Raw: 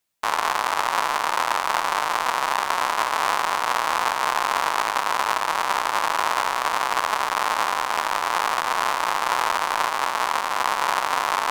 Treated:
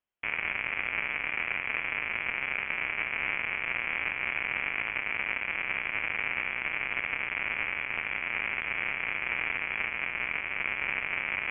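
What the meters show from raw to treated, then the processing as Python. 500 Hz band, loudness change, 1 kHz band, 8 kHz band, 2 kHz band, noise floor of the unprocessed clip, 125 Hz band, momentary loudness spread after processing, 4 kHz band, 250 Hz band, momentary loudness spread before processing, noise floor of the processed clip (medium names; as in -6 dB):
-14.5 dB, -7.5 dB, -21.0 dB, under -40 dB, -2.0 dB, -28 dBFS, no reading, 1 LU, -13.0 dB, -7.5 dB, 1 LU, -37 dBFS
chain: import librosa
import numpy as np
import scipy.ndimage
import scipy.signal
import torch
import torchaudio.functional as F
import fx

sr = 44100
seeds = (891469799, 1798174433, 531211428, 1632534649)

y = fx.freq_invert(x, sr, carrier_hz=3300)
y = y * librosa.db_to_amplitude(-9.0)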